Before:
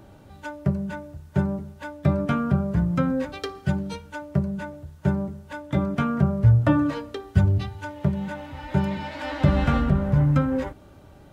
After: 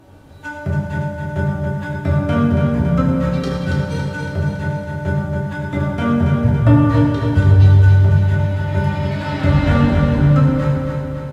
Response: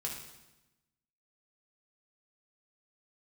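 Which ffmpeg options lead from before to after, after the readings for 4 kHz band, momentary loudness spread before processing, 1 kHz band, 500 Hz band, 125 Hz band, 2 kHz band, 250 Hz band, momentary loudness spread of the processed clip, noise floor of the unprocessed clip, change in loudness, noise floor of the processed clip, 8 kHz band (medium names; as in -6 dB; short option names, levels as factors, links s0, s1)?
+7.0 dB, 14 LU, +6.5 dB, +7.5 dB, +9.5 dB, +9.0 dB, +6.5 dB, 11 LU, -49 dBFS, +8.0 dB, -30 dBFS, no reading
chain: -filter_complex "[0:a]bandreject=f=50:t=h:w=6,bandreject=f=100:t=h:w=6,bandreject=f=150:t=h:w=6,bandreject=f=200:t=h:w=6,aecho=1:1:279|558|837|1116|1395|1674|1953:0.562|0.315|0.176|0.0988|0.0553|0.031|0.0173[s0];[1:a]atrim=start_sample=2205,asetrate=28665,aresample=44100[s1];[s0][s1]afir=irnorm=-1:irlink=0,volume=1.19"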